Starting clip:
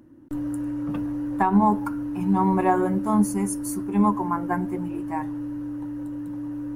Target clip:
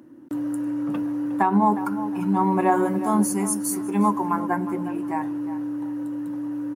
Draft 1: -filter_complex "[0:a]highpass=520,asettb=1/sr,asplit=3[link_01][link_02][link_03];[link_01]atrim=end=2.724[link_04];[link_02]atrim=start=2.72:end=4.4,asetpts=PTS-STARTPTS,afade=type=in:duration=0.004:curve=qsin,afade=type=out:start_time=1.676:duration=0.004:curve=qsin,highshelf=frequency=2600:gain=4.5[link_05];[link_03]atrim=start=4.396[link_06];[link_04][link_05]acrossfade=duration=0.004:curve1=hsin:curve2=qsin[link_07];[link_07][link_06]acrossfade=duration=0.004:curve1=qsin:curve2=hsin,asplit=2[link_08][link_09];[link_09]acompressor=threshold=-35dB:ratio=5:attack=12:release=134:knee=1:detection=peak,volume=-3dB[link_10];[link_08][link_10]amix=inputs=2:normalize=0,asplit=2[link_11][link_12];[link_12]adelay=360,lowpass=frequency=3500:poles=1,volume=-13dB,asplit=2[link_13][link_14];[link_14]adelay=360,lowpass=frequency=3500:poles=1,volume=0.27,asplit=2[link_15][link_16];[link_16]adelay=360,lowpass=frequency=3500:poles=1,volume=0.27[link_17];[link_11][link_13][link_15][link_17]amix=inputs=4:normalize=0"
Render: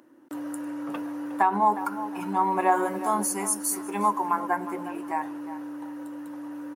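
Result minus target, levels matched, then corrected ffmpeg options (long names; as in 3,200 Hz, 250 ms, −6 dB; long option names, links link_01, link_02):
250 Hz band −6.0 dB
-filter_complex "[0:a]highpass=190,asettb=1/sr,asplit=3[link_01][link_02][link_03];[link_01]atrim=end=2.724[link_04];[link_02]atrim=start=2.72:end=4.4,asetpts=PTS-STARTPTS,afade=type=in:duration=0.004:curve=qsin,afade=type=out:start_time=1.676:duration=0.004:curve=qsin,highshelf=frequency=2600:gain=4.5[link_05];[link_03]atrim=start=4.396[link_06];[link_04][link_05]acrossfade=duration=0.004:curve1=hsin:curve2=qsin[link_07];[link_07][link_06]acrossfade=duration=0.004:curve1=qsin:curve2=hsin,asplit=2[link_08][link_09];[link_09]acompressor=threshold=-35dB:ratio=5:attack=12:release=134:knee=1:detection=peak,volume=-3dB[link_10];[link_08][link_10]amix=inputs=2:normalize=0,asplit=2[link_11][link_12];[link_12]adelay=360,lowpass=frequency=3500:poles=1,volume=-13dB,asplit=2[link_13][link_14];[link_14]adelay=360,lowpass=frequency=3500:poles=1,volume=0.27,asplit=2[link_15][link_16];[link_16]adelay=360,lowpass=frequency=3500:poles=1,volume=0.27[link_17];[link_11][link_13][link_15][link_17]amix=inputs=4:normalize=0"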